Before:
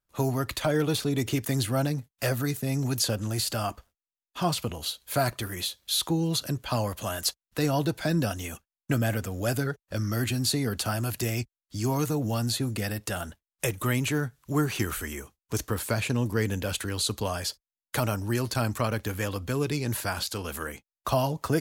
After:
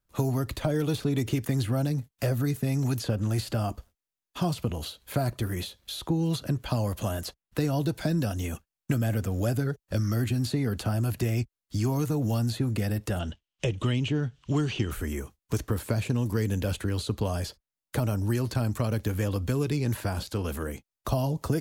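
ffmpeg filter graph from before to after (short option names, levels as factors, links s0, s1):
-filter_complex "[0:a]asettb=1/sr,asplit=3[s0][s1][s2];[s0]atrim=end=13.194[s3];[s1]atrim=start=13.19:end=14.91,asetpts=PTS-STARTPTS,afade=t=in:d=0.004:c=qsin,afade=t=out:st=1.716:d=0.004:c=qsin,lowpass=f=6800:w=0.5412,lowpass=f=6800:w=1.3066,equalizer=f=3000:t=o:w=0.52:g=13.5[s4];[s2]atrim=start=14.906[s5];[s3][s4]acrossfade=d=0.004:c1=hsin:c2=qsin[s6];[s6][s5]acrossfade=d=0.004:c1=qsin:c2=hsin,lowshelf=f=320:g=6,acrossover=split=740|3200[s7][s8][s9];[s7]acompressor=threshold=0.0501:ratio=4[s10];[s8]acompressor=threshold=0.00631:ratio=4[s11];[s9]acompressor=threshold=0.00562:ratio=4[s12];[s10][s11][s12]amix=inputs=3:normalize=0,volume=1.26"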